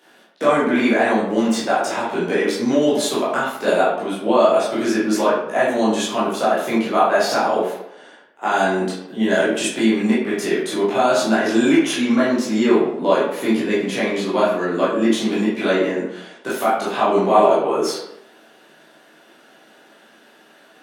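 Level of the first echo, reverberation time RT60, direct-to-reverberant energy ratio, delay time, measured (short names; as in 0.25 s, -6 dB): none, 0.85 s, -10.0 dB, none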